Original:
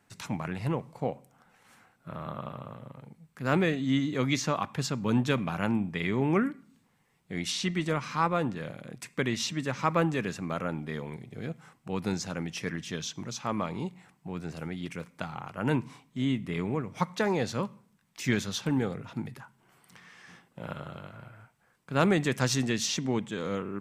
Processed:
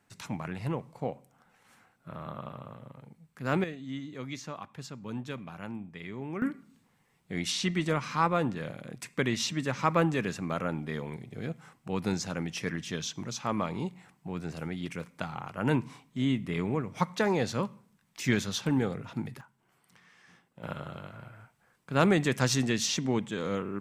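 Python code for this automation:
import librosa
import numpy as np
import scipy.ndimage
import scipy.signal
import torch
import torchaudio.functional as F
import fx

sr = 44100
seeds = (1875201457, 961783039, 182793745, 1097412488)

y = fx.gain(x, sr, db=fx.steps((0.0, -2.5), (3.64, -11.5), (6.42, 0.5), (19.41, -7.0), (20.63, 0.5)))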